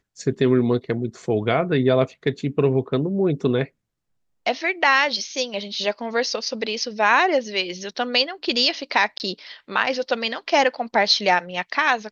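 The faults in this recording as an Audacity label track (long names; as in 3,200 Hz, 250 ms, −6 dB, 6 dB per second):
9.180000	9.200000	drop-out 19 ms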